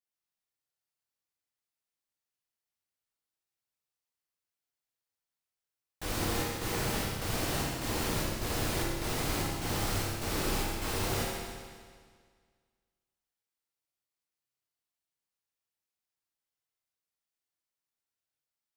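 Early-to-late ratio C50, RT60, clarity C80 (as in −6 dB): −1.5 dB, 1.8 s, 0.5 dB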